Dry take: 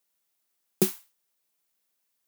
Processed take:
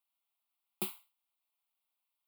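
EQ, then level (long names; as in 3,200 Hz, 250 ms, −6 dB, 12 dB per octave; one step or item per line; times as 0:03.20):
high-pass filter 380 Hz
high-shelf EQ 5,300 Hz −6.5 dB
phaser with its sweep stopped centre 1,700 Hz, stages 6
−3.0 dB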